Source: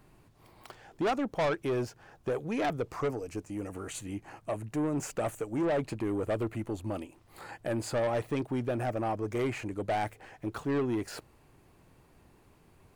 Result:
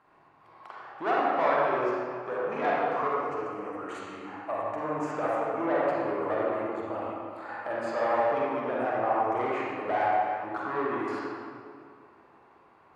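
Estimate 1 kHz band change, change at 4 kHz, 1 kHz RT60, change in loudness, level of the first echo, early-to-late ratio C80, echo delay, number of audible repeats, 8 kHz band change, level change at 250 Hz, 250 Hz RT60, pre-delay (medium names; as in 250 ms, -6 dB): +9.5 dB, -3.0 dB, 2.1 s, +4.0 dB, no echo, -1.5 dB, no echo, no echo, under -10 dB, -2.0 dB, 2.6 s, 36 ms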